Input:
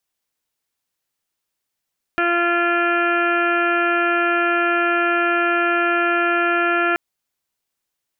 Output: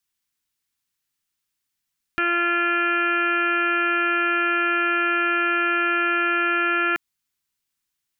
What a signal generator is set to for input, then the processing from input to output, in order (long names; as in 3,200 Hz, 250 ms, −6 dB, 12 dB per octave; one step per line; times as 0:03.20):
steady harmonic partials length 4.78 s, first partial 345 Hz, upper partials −1.5/−13/2.5/−1/−15/−5/−11.5/−18 dB, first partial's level −22 dB
parametric band 580 Hz −14 dB 1.1 octaves